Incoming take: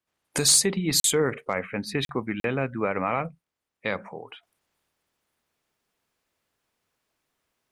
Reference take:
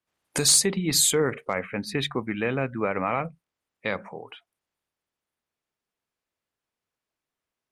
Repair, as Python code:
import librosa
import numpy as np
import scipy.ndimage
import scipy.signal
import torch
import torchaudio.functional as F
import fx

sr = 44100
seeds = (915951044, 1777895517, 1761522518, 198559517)

y = fx.fix_interpolate(x, sr, at_s=(1.0, 2.05, 2.4), length_ms=42.0)
y = fx.gain(y, sr, db=fx.steps((0.0, 0.0), (4.43, -9.5)))